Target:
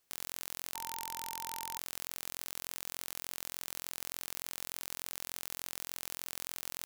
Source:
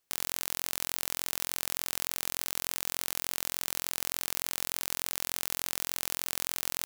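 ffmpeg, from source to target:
-filter_complex "[0:a]alimiter=limit=0.168:level=0:latency=1,asettb=1/sr,asplit=3[s0][s1][s2];[s0]atrim=end=0.754[s3];[s1]atrim=start=0.75:end=1.78,asetpts=PTS-STARTPTS,afade=t=in:d=0.004:c=qsin,afade=t=out:st=1.026:d=0.004:c=qsin,aeval=exprs='val(0)+0.00562*sin(2*PI*910*n/s)':c=same[s4];[s2]atrim=start=1.776[s5];[s3][s4]acrossfade=d=0.004:c1=hsin:c2=qsin[s6];[s6][s5]acrossfade=d=0.004:c1=qsin:c2=hsin,volume=1.33"

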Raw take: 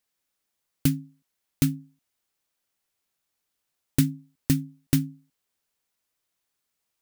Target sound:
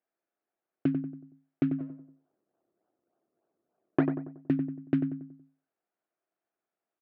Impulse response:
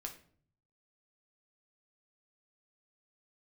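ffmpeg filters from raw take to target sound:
-filter_complex "[0:a]asplit=3[s0][s1][s2];[s0]afade=t=out:st=1.78:d=0.02[s3];[s1]acrusher=samples=39:mix=1:aa=0.000001:lfo=1:lforange=39:lforate=3.4,afade=t=in:st=1.78:d=0.02,afade=t=out:st=4.04:d=0.02[s4];[s2]afade=t=in:st=4.04:d=0.02[s5];[s3][s4][s5]amix=inputs=3:normalize=0,highpass=220,equalizer=f=350:t=q:w=4:g=8,equalizer=f=680:t=q:w=4:g=8,equalizer=f=1000:t=q:w=4:g=-5,equalizer=f=2000:t=q:w=4:g=-5,lowpass=f=2000:w=0.5412,lowpass=f=2000:w=1.3066,asplit=2[s6][s7];[s7]adelay=93,lowpass=f=1400:p=1,volume=0.447,asplit=2[s8][s9];[s9]adelay=93,lowpass=f=1400:p=1,volume=0.45,asplit=2[s10][s11];[s11]adelay=93,lowpass=f=1400:p=1,volume=0.45,asplit=2[s12][s13];[s13]adelay=93,lowpass=f=1400:p=1,volume=0.45,asplit=2[s14][s15];[s15]adelay=93,lowpass=f=1400:p=1,volume=0.45[s16];[s6][s8][s10][s12][s14][s16]amix=inputs=6:normalize=0,volume=0.75"

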